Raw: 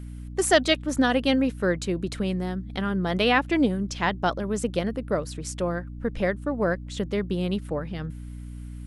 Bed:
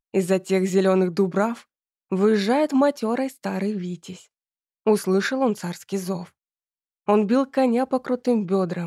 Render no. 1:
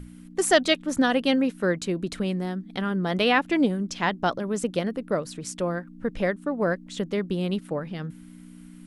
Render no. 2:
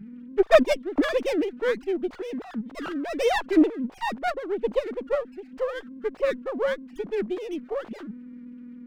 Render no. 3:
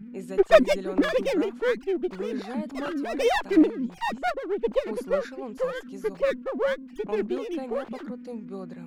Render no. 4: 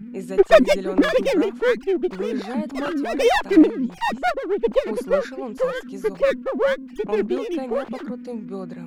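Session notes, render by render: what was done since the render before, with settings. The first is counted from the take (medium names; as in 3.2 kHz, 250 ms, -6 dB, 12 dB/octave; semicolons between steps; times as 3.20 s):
hum notches 60/120 Hz
formants replaced by sine waves; sliding maximum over 9 samples
add bed -16.5 dB
trim +5.5 dB; peak limiter -2 dBFS, peak gain reduction 3 dB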